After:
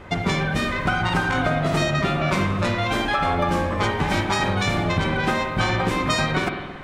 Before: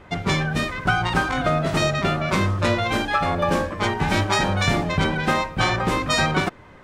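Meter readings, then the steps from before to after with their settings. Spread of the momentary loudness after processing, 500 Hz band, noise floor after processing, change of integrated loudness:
2 LU, −0.5 dB, −31 dBFS, −0.5 dB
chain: downward compressor, threshold −24 dBFS, peak gain reduction 9 dB
spring reverb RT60 1.5 s, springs 46/55 ms, chirp 25 ms, DRR 4.5 dB
level +4.5 dB

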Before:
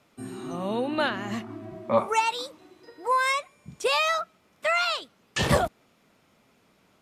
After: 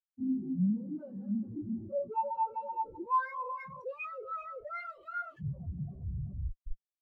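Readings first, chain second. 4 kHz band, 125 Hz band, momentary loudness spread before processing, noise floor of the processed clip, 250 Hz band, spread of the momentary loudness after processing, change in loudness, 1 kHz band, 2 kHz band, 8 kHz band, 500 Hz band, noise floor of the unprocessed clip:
below −40 dB, −2.5 dB, 14 LU, below −85 dBFS, −1.0 dB, 10 LU, −10.0 dB, −7.0 dB, −16.0 dB, below −40 dB, −13.0 dB, −64 dBFS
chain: feedback delay that plays each chunk backwards 192 ms, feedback 49%, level −4 dB
low-shelf EQ 350 Hz +11 dB
rectangular room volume 700 cubic metres, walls furnished, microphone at 1.1 metres
noise gate with hold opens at −36 dBFS
hum removal 117.6 Hz, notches 4
downward compressor 6 to 1, threshold −26 dBFS, peak gain reduction 15.5 dB
notch filter 620 Hz, Q 12
comparator with hysteresis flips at −38 dBFS
high-shelf EQ 4,700 Hz +9.5 dB
every bin expanded away from the loudest bin 4 to 1
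level −3.5 dB

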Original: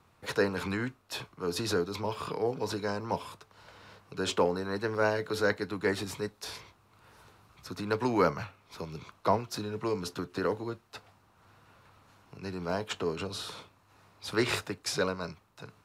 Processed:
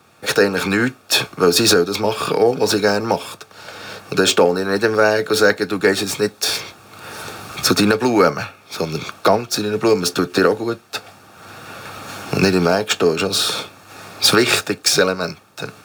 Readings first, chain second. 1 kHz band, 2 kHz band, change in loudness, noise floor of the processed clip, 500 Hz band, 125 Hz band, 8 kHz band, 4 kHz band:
+13.0 dB, +16.0 dB, +15.5 dB, −48 dBFS, +15.0 dB, +12.0 dB, +20.5 dB, +19.5 dB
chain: running median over 3 samples
camcorder AGC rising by 9.7 dB per second
high-pass filter 150 Hz 6 dB per octave
high-shelf EQ 4,600 Hz +8 dB
notch comb filter 1,000 Hz
boost into a limiter +14.5 dB
level −1 dB
Ogg Vorbis 192 kbit/s 48,000 Hz

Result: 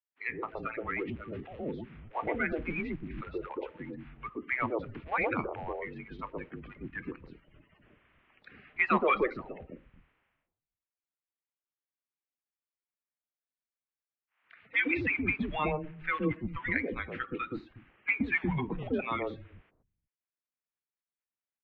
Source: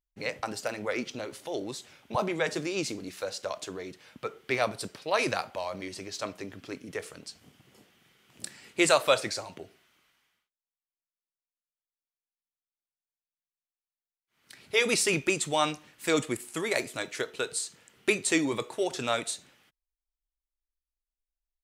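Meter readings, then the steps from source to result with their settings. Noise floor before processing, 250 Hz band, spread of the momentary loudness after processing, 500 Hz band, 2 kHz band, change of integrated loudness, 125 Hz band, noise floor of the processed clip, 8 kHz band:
below −85 dBFS, −1.5 dB, 15 LU, −6.0 dB, 0.0 dB, −3.0 dB, +2.0 dB, below −85 dBFS, below −40 dB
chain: spectral magnitudes quantised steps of 30 dB
three-band delay without the direct sound highs, mids, lows 120/360 ms, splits 230/880 Hz
single-sideband voice off tune −140 Hz 160–2,700 Hz

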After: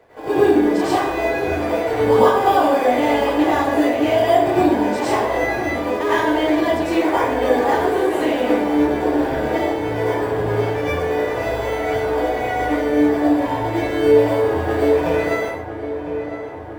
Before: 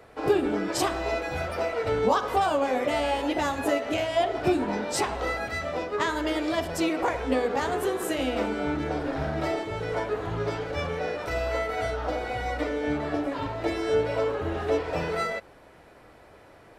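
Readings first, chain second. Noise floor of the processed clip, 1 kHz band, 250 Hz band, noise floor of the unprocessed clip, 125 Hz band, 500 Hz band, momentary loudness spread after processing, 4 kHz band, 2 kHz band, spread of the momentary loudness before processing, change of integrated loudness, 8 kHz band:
−29 dBFS, +9.5 dB, +11.0 dB, −52 dBFS, +7.0 dB, +10.0 dB, 7 LU, +4.5 dB, +7.5 dB, 6 LU, +9.5 dB, +1.0 dB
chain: bass and treble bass −6 dB, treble −11 dB
notch filter 1,300 Hz, Q 5.4
in parallel at −12 dB: sample-rate reduction 4,100 Hz, jitter 0%
on the sum: feedback echo with a low-pass in the loop 1,006 ms, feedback 68%, low-pass 2,400 Hz, level −11 dB
dense smooth reverb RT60 0.71 s, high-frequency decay 0.7×, pre-delay 85 ms, DRR −9.5 dB
level −2 dB

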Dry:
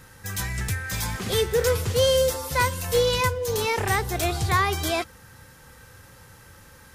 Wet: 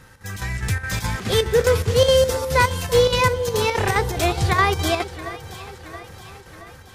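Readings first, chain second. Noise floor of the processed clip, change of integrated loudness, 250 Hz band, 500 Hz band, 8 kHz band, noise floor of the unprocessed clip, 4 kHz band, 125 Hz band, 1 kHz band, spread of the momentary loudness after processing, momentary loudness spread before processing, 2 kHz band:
−45 dBFS, +4.0 dB, +5.0 dB, +5.0 dB, +0.5 dB, −50 dBFS, +3.5 dB, +4.5 dB, +4.5 dB, 19 LU, 8 LU, +4.0 dB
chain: square-wave tremolo 4.8 Hz, depth 60%, duty 75%
high-shelf EQ 8,900 Hz −10 dB
automatic gain control gain up to 4 dB
on a send: delay that swaps between a low-pass and a high-pass 337 ms, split 1,000 Hz, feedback 73%, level −12.5 dB
on the sum: level +1.5 dB

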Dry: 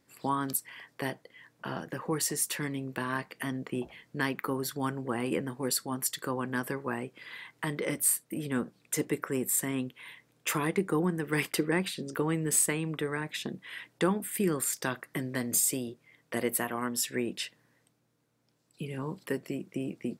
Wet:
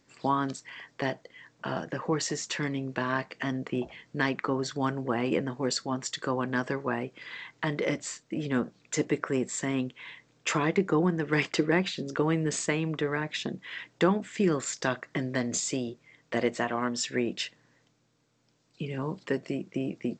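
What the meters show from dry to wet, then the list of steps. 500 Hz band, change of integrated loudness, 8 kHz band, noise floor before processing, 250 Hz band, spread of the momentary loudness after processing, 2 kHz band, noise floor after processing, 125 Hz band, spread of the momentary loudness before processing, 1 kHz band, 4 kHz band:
+4.0 dB, +1.5 dB, −5.5 dB, −71 dBFS, +3.0 dB, 9 LU, +3.0 dB, −68 dBFS, +3.0 dB, 12 LU, +3.5 dB, +3.0 dB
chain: dynamic equaliser 640 Hz, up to +5 dB, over −52 dBFS, Q 4.4
level +3 dB
G.722 64 kbit/s 16,000 Hz

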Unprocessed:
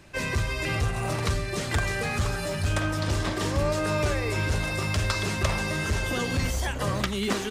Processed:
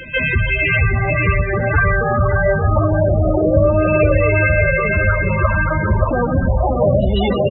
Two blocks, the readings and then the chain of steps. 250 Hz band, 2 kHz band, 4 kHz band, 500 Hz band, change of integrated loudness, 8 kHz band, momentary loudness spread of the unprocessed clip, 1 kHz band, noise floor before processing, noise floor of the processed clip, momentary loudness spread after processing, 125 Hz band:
+10.5 dB, +12.0 dB, can't be measured, +14.5 dB, +11.5 dB, below −40 dB, 2 LU, +10.5 dB, −31 dBFS, −19 dBFS, 3 LU, +11.5 dB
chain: auto-filter low-pass saw down 0.28 Hz 600–3,700 Hz
dynamic equaliser 600 Hz, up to +3 dB, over −40 dBFS, Q 3.9
on a send: repeating echo 578 ms, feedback 46%, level −3 dB
on the sum: spectral peaks only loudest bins 16
in parallel at −1 dB: downward compressor, threshold −32 dBFS, peak gain reduction 13.5 dB
on the sum: echo ahead of the sound 147 ms −17 dB
level +7.5 dB

